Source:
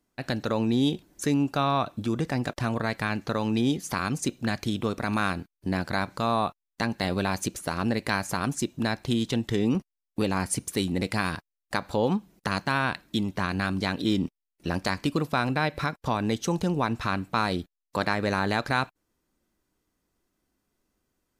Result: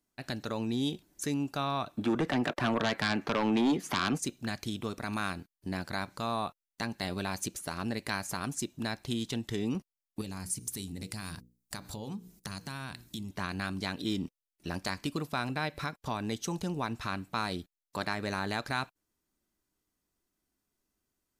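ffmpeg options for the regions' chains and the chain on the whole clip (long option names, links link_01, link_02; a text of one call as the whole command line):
ffmpeg -i in.wav -filter_complex "[0:a]asettb=1/sr,asplit=3[link_01][link_02][link_03];[link_01]atrim=end=1.974[link_04];[link_02]atrim=start=1.97:end=4.18,asetpts=PTS-STARTPTS,afade=type=in:duration=0.004:curve=qsin,afade=type=out:start_time=2.206:duration=0.004:curve=qsin,acrossover=split=210 2800:gain=0.224 1 0.158[link_05][link_06][link_07];[link_05][link_06][link_07]amix=inputs=3:normalize=0,aeval=exprs='0.2*sin(PI/2*2.51*val(0)/0.2)':channel_layout=same[link_08];[link_03]atrim=start=4.176[link_09];[link_04][link_08]acrossfade=duration=0.004:curve1=hsin:curve2=qsin[link_10];[link_10][link_09]acrossfade=duration=0.004:curve1=qsin:curve2=hsin,asettb=1/sr,asplit=3[link_11][link_12][link_13];[link_11]atrim=end=10.214[link_14];[link_12]atrim=start=10.21:end=13.31,asetpts=PTS-STARTPTS,afade=type=in:duration=0.004:curve=qsin,afade=type=out:start_time=3.096:duration=0.004:curve=qsin,bass=frequency=250:gain=9,treble=frequency=4000:gain=10,bandreject=frequency=60:width_type=h:width=6,bandreject=frequency=120:width_type=h:width=6,bandreject=frequency=180:width_type=h:width=6,bandreject=frequency=240:width_type=h:width=6,bandreject=frequency=300:width_type=h:width=6,bandreject=frequency=360:width_type=h:width=6,bandreject=frequency=420:width_type=h:width=6,bandreject=frequency=480:width_type=h:width=6,acompressor=threshold=-33dB:ratio=2.5:attack=3.2:release=140:knee=1:detection=peak[link_15];[link_13]atrim=start=13.306[link_16];[link_14][link_15]acrossfade=duration=0.004:curve1=hsin:curve2=qsin[link_17];[link_17][link_16]acrossfade=duration=0.004:curve1=qsin:curve2=hsin,highshelf=frequency=3800:gain=6.5,bandreject=frequency=510:width=12,volume=-8dB" out.wav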